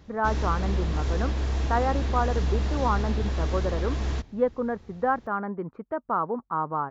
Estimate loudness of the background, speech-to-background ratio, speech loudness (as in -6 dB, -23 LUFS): -29.0 LUFS, -0.5 dB, -29.5 LUFS